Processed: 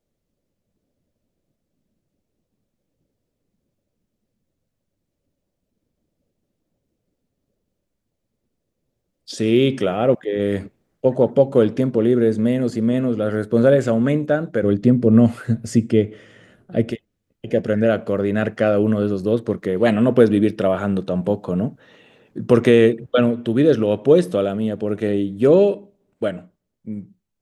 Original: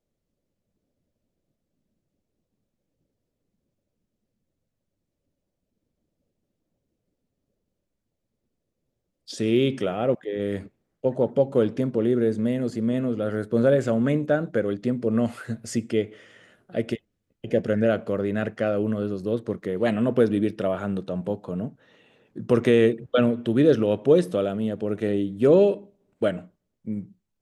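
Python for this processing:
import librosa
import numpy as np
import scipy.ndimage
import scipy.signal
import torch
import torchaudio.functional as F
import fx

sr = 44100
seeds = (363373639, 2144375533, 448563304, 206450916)

y = fx.low_shelf(x, sr, hz=350.0, db=11.5, at=(14.63, 16.91))
y = fx.rider(y, sr, range_db=4, speed_s=2.0)
y = y * 10.0 ** (4.5 / 20.0)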